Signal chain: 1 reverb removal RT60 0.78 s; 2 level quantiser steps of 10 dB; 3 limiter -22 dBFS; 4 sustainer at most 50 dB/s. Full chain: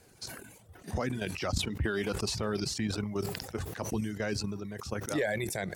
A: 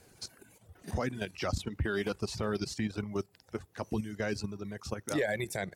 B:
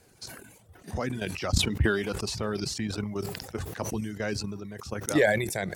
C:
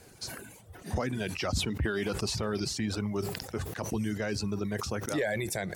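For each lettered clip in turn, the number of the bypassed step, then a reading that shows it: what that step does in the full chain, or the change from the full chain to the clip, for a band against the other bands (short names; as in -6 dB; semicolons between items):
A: 4, crest factor change -5.5 dB; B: 3, momentary loudness spread change +4 LU; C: 2, momentary loudness spread change -2 LU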